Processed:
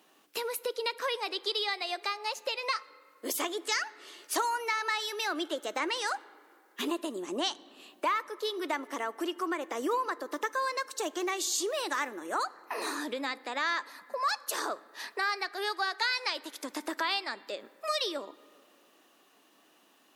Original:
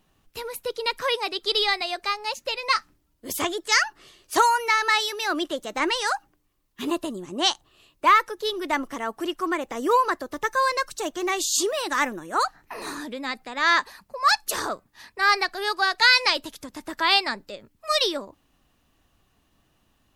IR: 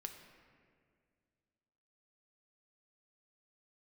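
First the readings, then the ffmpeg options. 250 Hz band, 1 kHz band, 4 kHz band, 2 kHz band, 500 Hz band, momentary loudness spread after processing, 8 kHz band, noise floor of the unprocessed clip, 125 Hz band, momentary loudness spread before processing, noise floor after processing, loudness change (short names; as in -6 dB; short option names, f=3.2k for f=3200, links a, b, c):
-6.0 dB, -9.5 dB, -9.0 dB, -9.5 dB, -6.0 dB, 8 LU, -6.5 dB, -68 dBFS, n/a, 14 LU, -64 dBFS, -9.0 dB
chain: -filter_complex "[0:a]highpass=f=280:w=0.5412,highpass=f=280:w=1.3066,acompressor=threshold=-39dB:ratio=3,asplit=2[a][b];[1:a]atrim=start_sample=2205,asetrate=37044,aresample=44100[c];[b][c]afir=irnorm=-1:irlink=0,volume=-8dB[d];[a][d]amix=inputs=2:normalize=0,volume=3.5dB"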